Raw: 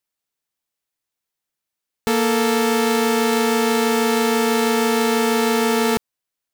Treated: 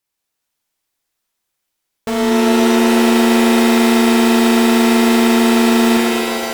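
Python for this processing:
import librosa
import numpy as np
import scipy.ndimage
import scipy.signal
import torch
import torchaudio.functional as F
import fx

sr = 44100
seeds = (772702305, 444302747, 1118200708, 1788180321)

y = fx.high_shelf(x, sr, hz=6700.0, db=-10.0, at=(2.1, 3.0))
y = fx.fold_sine(y, sr, drive_db=6, ceiling_db=-10.0)
y = fx.rev_shimmer(y, sr, seeds[0], rt60_s=3.0, semitones=7, shimmer_db=-2, drr_db=-3.0)
y = F.gain(torch.from_numpy(y), -7.0).numpy()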